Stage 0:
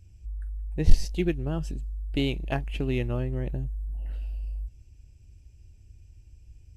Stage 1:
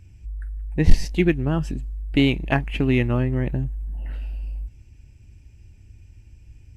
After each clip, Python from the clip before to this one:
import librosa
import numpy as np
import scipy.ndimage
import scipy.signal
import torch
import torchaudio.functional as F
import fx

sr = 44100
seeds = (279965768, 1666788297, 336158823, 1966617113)

y = fx.graphic_eq(x, sr, hz=(125, 250, 1000, 2000), db=(4, 7, 6, 9))
y = F.gain(torch.from_numpy(y), 2.5).numpy()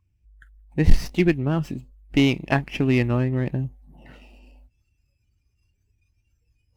y = fx.noise_reduce_blind(x, sr, reduce_db=21)
y = fx.running_max(y, sr, window=3)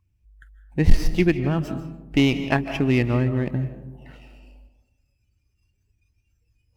y = fx.rev_freeverb(x, sr, rt60_s=0.96, hf_ratio=0.35, predelay_ms=115, drr_db=10.5)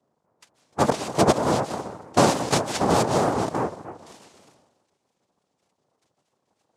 y = fx.noise_vocoder(x, sr, seeds[0], bands=2)
y = fx.vibrato_shape(y, sr, shape='saw_up', rate_hz=3.3, depth_cents=100.0)